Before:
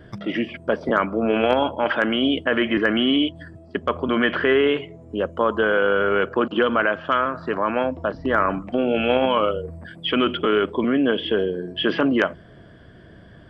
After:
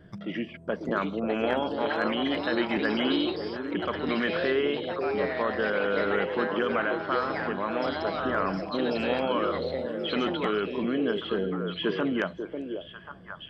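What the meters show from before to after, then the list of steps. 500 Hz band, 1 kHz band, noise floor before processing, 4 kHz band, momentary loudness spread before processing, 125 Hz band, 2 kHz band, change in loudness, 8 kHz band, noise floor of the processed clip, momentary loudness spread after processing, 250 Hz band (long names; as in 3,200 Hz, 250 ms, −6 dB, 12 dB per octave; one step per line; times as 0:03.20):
−6.5 dB, −6.5 dB, −46 dBFS, −7.5 dB, 8 LU, −4.5 dB, −7.0 dB, −7.0 dB, can't be measured, −46 dBFS, 8 LU, −6.5 dB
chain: parametric band 180 Hz +11.5 dB 0.24 octaves
delay with pitch and tempo change per echo 746 ms, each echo +4 semitones, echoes 2, each echo −6 dB
on a send: echo through a band-pass that steps 543 ms, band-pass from 420 Hz, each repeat 1.4 octaves, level −3 dB
on the sum: level −9 dB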